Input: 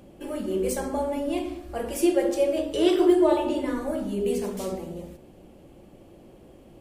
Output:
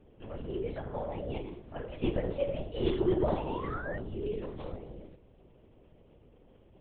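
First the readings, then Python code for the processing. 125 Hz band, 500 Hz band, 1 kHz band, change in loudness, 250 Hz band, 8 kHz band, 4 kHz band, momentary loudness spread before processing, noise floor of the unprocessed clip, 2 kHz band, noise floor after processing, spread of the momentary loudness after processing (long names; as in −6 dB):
+3.5 dB, −9.5 dB, −8.0 dB, −9.5 dB, −11.5 dB, below −40 dB, −11.0 dB, 14 LU, −51 dBFS, −6.0 dB, −60 dBFS, 14 LU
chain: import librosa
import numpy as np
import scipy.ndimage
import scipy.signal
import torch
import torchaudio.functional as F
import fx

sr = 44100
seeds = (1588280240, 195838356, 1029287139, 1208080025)

y = fx.spec_paint(x, sr, seeds[0], shape='rise', start_s=3.48, length_s=0.49, low_hz=850.0, high_hz=1900.0, level_db=-32.0)
y = fx.lpc_vocoder(y, sr, seeds[1], excitation='whisper', order=10)
y = y * 10.0 ** (-9.0 / 20.0)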